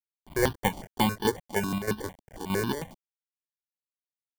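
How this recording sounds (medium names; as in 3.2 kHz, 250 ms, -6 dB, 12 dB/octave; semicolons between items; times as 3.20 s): aliases and images of a low sample rate 1.3 kHz, jitter 0%; chopped level 3.2 Hz, depth 60%, duty 70%; a quantiser's noise floor 8-bit, dither none; notches that jump at a steady rate 11 Hz 450–2100 Hz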